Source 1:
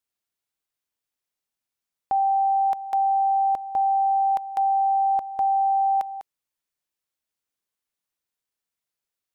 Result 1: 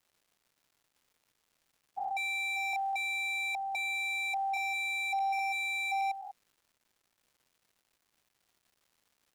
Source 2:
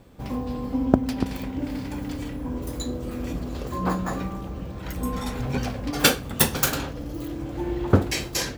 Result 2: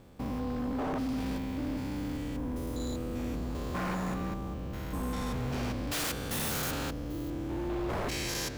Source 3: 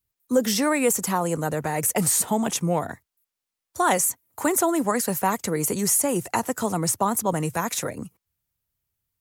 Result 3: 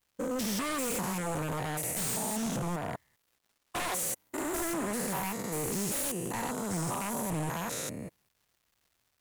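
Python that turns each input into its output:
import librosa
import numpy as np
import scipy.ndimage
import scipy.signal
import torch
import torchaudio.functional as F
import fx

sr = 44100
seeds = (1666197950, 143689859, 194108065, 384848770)

y = fx.spec_steps(x, sr, hold_ms=200)
y = fx.dmg_crackle(y, sr, seeds[0], per_s=440.0, level_db=-57.0)
y = 10.0 ** (-25.0 / 20.0) * (np.abs((y / 10.0 ** (-25.0 / 20.0) + 3.0) % 4.0 - 2.0) - 1.0)
y = y * librosa.db_to_amplitude(-2.5)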